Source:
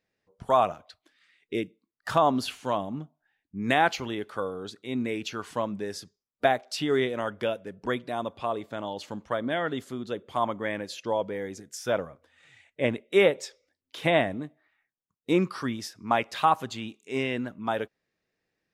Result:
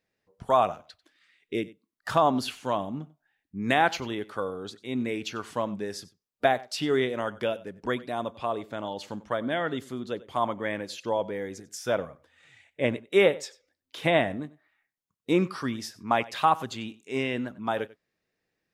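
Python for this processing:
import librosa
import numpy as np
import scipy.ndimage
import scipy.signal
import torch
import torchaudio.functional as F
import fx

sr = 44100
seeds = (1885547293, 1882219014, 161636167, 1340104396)

y = x + 10.0 ** (-20.0 / 20.0) * np.pad(x, (int(94 * sr / 1000.0), 0))[:len(x)]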